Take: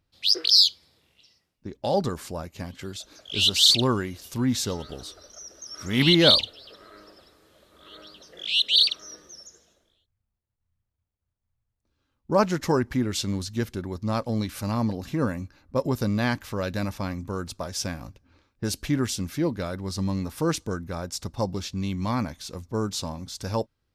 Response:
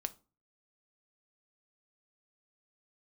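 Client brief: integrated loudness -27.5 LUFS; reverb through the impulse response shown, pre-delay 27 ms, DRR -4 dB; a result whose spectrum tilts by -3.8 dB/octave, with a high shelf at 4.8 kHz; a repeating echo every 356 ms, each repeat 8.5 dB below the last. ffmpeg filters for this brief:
-filter_complex "[0:a]highshelf=f=4800:g=-8.5,aecho=1:1:356|712|1068|1424:0.376|0.143|0.0543|0.0206,asplit=2[s0][s1];[1:a]atrim=start_sample=2205,adelay=27[s2];[s1][s2]afir=irnorm=-1:irlink=0,volume=1.68[s3];[s0][s3]amix=inputs=2:normalize=0,volume=0.473"

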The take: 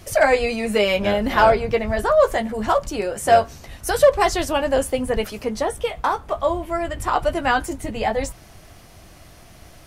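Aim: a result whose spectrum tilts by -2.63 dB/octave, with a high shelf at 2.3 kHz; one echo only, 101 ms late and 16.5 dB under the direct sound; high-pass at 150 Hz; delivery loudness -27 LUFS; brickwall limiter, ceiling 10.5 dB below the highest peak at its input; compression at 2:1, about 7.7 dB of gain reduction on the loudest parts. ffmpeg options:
-af "highpass=150,highshelf=f=2300:g=7,acompressor=threshold=0.0708:ratio=2,alimiter=limit=0.119:level=0:latency=1,aecho=1:1:101:0.15,volume=1.12"

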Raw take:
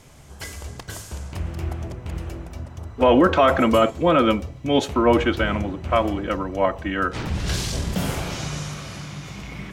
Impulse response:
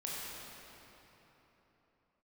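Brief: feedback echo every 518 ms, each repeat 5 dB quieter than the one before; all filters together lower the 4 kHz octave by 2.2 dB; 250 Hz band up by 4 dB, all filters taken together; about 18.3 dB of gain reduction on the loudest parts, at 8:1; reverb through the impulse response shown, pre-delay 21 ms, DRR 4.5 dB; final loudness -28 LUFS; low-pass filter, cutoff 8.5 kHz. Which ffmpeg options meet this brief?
-filter_complex "[0:a]lowpass=8500,equalizer=f=250:t=o:g=5,equalizer=f=4000:t=o:g=-3,acompressor=threshold=0.0398:ratio=8,aecho=1:1:518|1036|1554|2072|2590|3108|3626:0.562|0.315|0.176|0.0988|0.0553|0.031|0.0173,asplit=2[s0][s1];[1:a]atrim=start_sample=2205,adelay=21[s2];[s1][s2]afir=irnorm=-1:irlink=0,volume=0.447[s3];[s0][s3]amix=inputs=2:normalize=0,volume=1.26"

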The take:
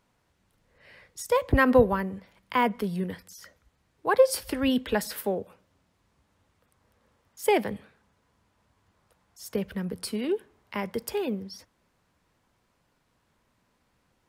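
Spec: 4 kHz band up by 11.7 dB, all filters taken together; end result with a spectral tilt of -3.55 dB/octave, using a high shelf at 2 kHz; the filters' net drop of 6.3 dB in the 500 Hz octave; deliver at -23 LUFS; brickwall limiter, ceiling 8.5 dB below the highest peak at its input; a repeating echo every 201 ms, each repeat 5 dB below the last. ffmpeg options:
-af "equalizer=f=500:t=o:g=-7.5,highshelf=f=2000:g=7,equalizer=f=4000:t=o:g=9,alimiter=limit=0.168:level=0:latency=1,aecho=1:1:201|402|603|804|1005|1206|1407:0.562|0.315|0.176|0.0988|0.0553|0.031|0.0173,volume=1.78"

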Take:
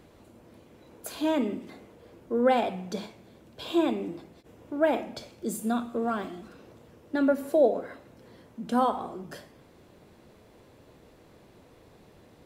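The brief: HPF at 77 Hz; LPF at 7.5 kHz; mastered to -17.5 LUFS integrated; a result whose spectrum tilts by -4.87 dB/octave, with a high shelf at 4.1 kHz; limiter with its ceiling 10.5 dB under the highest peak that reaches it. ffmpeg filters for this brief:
-af "highpass=77,lowpass=7500,highshelf=f=4100:g=-5.5,volume=6.68,alimiter=limit=0.501:level=0:latency=1"

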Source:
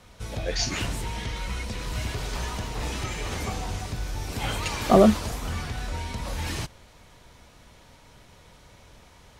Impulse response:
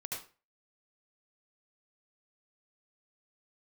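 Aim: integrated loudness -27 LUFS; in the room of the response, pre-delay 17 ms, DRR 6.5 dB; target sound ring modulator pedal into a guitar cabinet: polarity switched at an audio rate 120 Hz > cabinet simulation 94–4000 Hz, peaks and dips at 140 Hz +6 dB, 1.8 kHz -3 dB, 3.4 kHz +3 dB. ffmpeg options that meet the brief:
-filter_complex "[0:a]asplit=2[s0][s1];[1:a]atrim=start_sample=2205,adelay=17[s2];[s1][s2]afir=irnorm=-1:irlink=0,volume=0.447[s3];[s0][s3]amix=inputs=2:normalize=0,aeval=exprs='val(0)*sgn(sin(2*PI*120*n/s))':c=same,highpass=94,equalizer=f=140:t=q:w=4:g=6,equalizer=f=1800:t=q:w=4:g=-3,equalizer=f=3400:t=q:w=4:g=3,lowpass=f=4000:w=0.5412,lowpass=f=4000:w=1.3066,volume=1.06"

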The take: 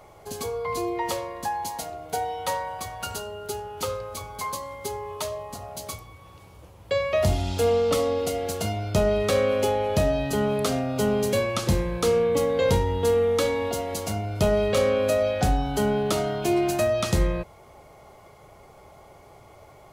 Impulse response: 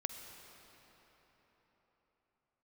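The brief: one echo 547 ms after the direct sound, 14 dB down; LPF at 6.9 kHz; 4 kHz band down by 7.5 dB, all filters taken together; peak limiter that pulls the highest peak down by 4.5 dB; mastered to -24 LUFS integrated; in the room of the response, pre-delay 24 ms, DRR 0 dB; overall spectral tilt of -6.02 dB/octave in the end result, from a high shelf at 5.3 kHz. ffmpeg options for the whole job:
-filter_complex "[0:a]lowpass=6900,equalizer=f=4000:t=o:g=-7,highshelf=f=5300:g=-6,alimiter=limit=0.15:level=0:latency=1,aecho=1:1:547:0.2,asplit=2[s0][s1];[1:a]atrim=start_sample=2205,adelay=24[s2];[s1][s2]afir=irnorm=-1:irlink=0,volume=1[s3];[s0][s3]amix=inputs=2:normalize=0,volume=0.891"

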